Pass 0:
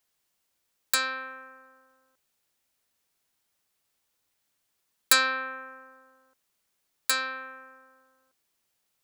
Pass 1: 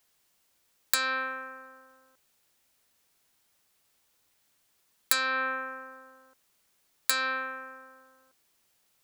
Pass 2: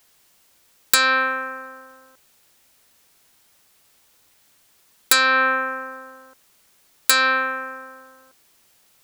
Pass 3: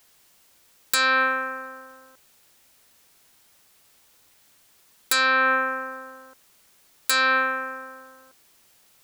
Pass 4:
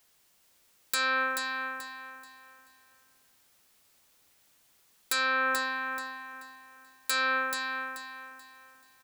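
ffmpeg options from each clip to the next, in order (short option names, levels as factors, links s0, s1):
-af "acompressor=threshold=0.0398:ratio=12,volume=2"
-af "aeval=exprs='0.794*sin(PI/2*2.82*val(0)/0.794)':c=same,volume=0.891"
-af "alimiter=limit=0.282:level=0:latency=1"
-af "aecho=1:1:433|866|1299|1732:0.501|0.155|0.0482|0.0149,volume=0.422"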